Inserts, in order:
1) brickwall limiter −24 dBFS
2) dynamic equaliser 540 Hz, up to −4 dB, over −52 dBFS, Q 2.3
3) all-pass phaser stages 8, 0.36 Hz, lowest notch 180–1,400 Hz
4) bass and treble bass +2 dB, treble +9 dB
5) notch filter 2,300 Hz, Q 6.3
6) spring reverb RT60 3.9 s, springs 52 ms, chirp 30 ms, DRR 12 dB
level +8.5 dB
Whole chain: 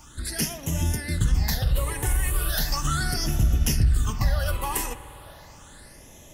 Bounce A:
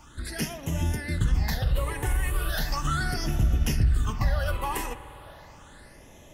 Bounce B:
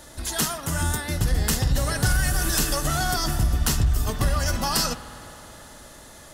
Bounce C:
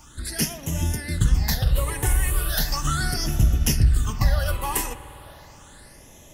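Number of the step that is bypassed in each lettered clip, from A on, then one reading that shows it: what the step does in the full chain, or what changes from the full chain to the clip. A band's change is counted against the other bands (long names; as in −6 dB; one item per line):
4, 8 kHz band −7.5 dB
3, 125 Hz band −4.0 dB
1, change in integrated loudness +2.0 LU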